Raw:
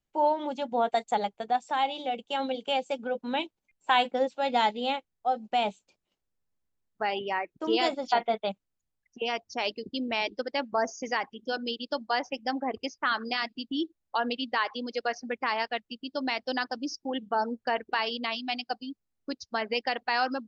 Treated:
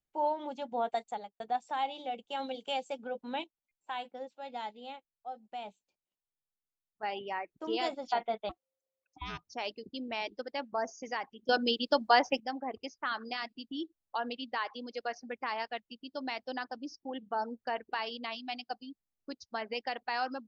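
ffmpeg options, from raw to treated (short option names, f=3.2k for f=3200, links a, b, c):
-filter_complex "[0:a]asettb=1/sr,asplit=3[a][b][c];[a]atrim=end=2.374[d];[b]atrim=start=2.37:end=2.9,asetpts=PTS-STARTPTS,afade=t=in:d=0.004:c=qsin,afade=t=out:st=0.526:d=0.004:c=qsin,aemphasis=mode=production:type=cd[e];[c]atrim=start=2.896[f];[d][e]acrossfade=d=0.004:c1=hsin:c2=qsin[g];[g][f]acrossfade=d=0.004:c1=qsin:c2=hsin,asettb=1/sr,asplit=3[h][i][j];[h]atrim=end=8.494[k];[i]atrim=start=8.49:end=9.45,asetpts=PTS-STARTPTS,afade=t=in:d=0.004:c=qsin,afade=t=out:st=0.956:d=0.004:c=qsin,aeval=exprs='val(0)*sin(2*PI*530*n/s)':c=same[l];[j]atrim=start=9.446[m];[k][l]acrossfade=d=0.004:c1=hsin:c2=qsin[n];[n][m]acrossfade=d=0.004:c1=qsin:c2=hsin,asettb=1/sr,asplit=3[o][p][q];[o]atrim=end=16.474[r];[p]atrim=start=16.47:end=17.31,asetpts=PTS-STARTPTS,afade=t=in:d=0.004:c=qsin,afade=t=out:st=0.836:d=0.004:c=qsin,highshelf=f=4.9k:g=-8.5[s];[q]atrim=start=17.306[t];[r][s]acrossfade=d=0.004:c1=hsin:c2=qsin[u];[u][t]acrossfade=d=0.004:c1=qsin:c2=hsin,asplit=6[v][w][x][y][z][aa];[v]atrim=end=1.4,asetpts=PTS-STARTPTS,afade=t=out:st=0.93:d=0.47[ab];[w]atrim=start=1.4:end=3.442,asetpts=PTS-STARTPTS,afade=t=in:d=0.004:c=hsin[ac];[x]atrim=start=3.438:end=7.032,asetpts=PTS-STARTPTS,volume=-9dB[ad];[y]atrim=start=7.028:end=11.492[ae];[z]atrim=start=11.488:end=12.402,asetpts=PTS-STARTPTS,volume=11dB[af];[aa]atrim=start=12.398[ag];[ab][ac]concat=n=2:v=0:a=1[ah];[ah][ad]acrossfade=d=0.004:c1=hsin:c2=hsin[ai];[ai][ae]acrossfade=d=0.004:c1=hsin:c2=hsin[aj];[aj][af]acrossfade=d=0.004:c1=hsin:c2=hsin[ak];[ak][ag]acrossfade=d=0.004:c1=hsin:c2=hsin,equalizer=f=790:w=1.5:g=2.5,volume=-8dB"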